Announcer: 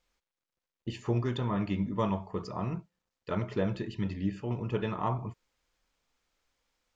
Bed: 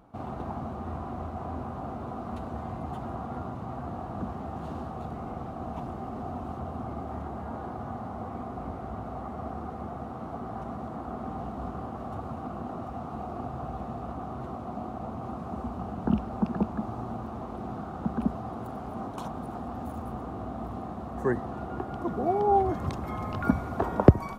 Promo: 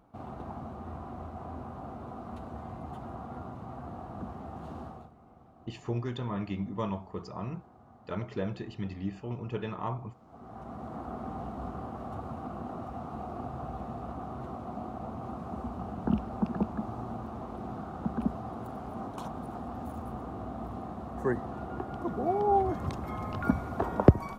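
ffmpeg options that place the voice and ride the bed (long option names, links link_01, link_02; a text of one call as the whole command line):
ffmpeg -i stem1.wav -i stem2.wav -filter_complex "[0:a]adelay=4800,volume=-3.5dB[link_01];[1:a]volume=12dB,afade=type=out:start_time=4.86:duration=0.25:silence=0.188365,afade=type=in:start_time=10.25:duration=0.72:silence=0.133352[link_02];[link_01][link_02]amix=inputs=2:normalize=0" out.wav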